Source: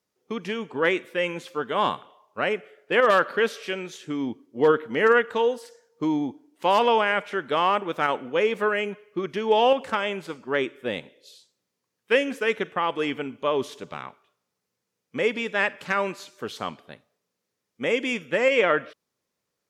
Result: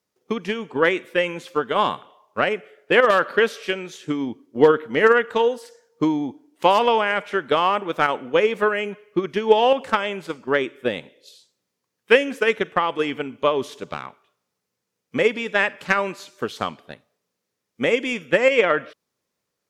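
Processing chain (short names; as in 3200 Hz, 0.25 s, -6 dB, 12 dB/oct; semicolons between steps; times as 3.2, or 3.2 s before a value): transient shaper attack +7 dB, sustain +1 dB; gain +1 dB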